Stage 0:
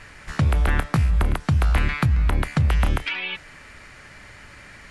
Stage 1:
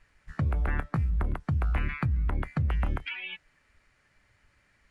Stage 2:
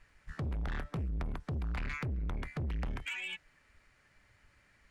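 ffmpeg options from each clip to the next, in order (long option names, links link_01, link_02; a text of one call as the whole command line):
ffmpeg -i in.wav -af "afftdn=noise_reduction=15:noise_floor=-29,volume=-8dB" out.wav
ffmpeg -i in.wav -af "asoftclip=type=tanh:threshold=-33dB" out.wav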